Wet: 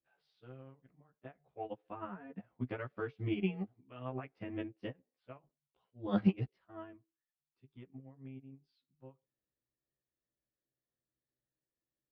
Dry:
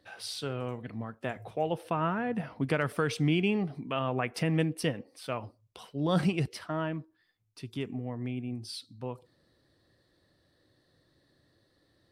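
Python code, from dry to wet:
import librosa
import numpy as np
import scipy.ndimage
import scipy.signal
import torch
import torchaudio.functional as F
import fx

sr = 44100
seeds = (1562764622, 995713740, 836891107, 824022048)

y = fx.frame_reverse(x, sr, frame_ms=31.0)
y = fx.air_absorb(y, sr, metres=340.0)
y = fx.upward_expand(y, sr, threshold_db=-43.0, expansion=2.5)
y = y * librosa.db_to_amplitude(3.5)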